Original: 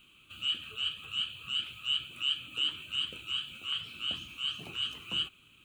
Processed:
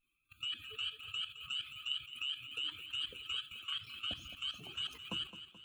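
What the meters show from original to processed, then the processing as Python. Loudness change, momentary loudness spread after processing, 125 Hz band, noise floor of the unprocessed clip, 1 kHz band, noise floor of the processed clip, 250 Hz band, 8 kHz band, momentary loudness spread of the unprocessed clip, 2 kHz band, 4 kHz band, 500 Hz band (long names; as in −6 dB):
−6.5 dB, 2 LU, −5.0 dB, −61 dBFS, −4.0 dB, −79 dBFS, −4.0 dB, −5.0 dB, 4 LU, −5.0 dB, −7.0 dB, −3.0 dB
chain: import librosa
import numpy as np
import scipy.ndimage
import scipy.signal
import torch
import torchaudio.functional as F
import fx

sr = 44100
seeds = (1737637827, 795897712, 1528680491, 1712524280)

p1 = fx.bin_expand(x, sr, power=2.0)
p2 = fx.level_steps(p1, sr, step_db=15)
p3 = p2 + fx.echo_feedback(p2, sr, ms=215, feedback_pct=50, wet_db=-12, dry=0)
p4 = fx.echo_warbled(p3, sr, ms=91, feedback_pct=52, rate_hz=2.8, cents=204, wet_db=-22.5)
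y = F.gain(torch.from_numpy(p4), 7.0).numpy()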